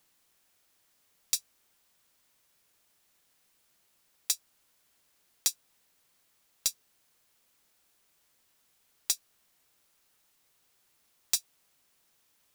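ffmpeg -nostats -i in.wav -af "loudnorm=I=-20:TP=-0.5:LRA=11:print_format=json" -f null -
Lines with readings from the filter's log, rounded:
"input_i" : "-32.3",
"input_tp" : "-11.3",
"input_lra" : "4.0",
"input_thresh" : "-49.3",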